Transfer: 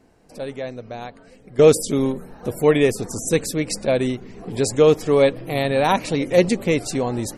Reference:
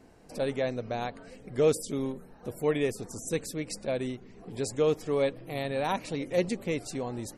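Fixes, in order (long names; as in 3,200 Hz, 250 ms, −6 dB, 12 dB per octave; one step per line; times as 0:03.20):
level 0 dB, from 0:01.59 −11.5 dB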